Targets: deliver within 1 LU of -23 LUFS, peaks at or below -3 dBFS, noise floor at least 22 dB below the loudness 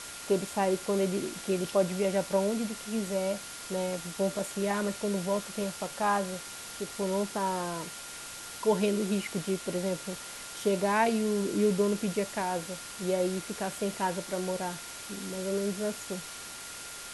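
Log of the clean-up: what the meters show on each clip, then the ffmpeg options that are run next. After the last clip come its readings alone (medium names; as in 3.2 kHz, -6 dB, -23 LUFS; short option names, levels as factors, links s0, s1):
steady tone 1.4 kHz; tone level -50 dBFS; noise floor -43 dBFS; noise floor target -54 dBFS; loudness -31.5 LUFS; peak level -12.5 dBFS; loudness target -23.0 LUFS
-> -af "bandreject=f=1400:w=30"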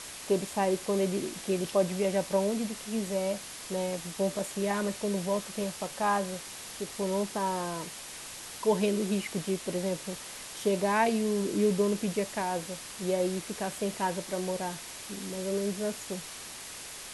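steady tone not found; noise floor -43 dBFS; noise floor target -54 dBFS
-> -af "afftdn=nr=11:nf=-43"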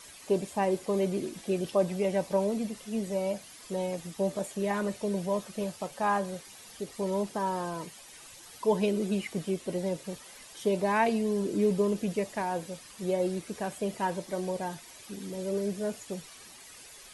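noise floor -50 dBFS; noise floor target -54 dBFS
-> -af "afftdn=nr=6:nf=-50"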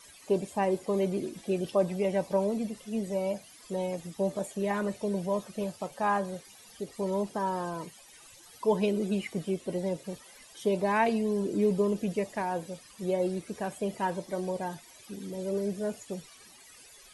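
noise floor -54 dBFS; loudness -31.5 LUFS; peak level -12.5 dBFS; loudness target -23.0 LUFS
-> -af "volume=2.66"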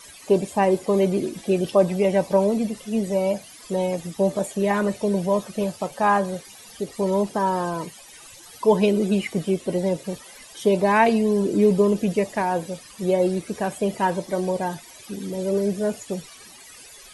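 loudness -23.0 LUFS; peak level -4.0 dBFS; noise floor -45 dBFS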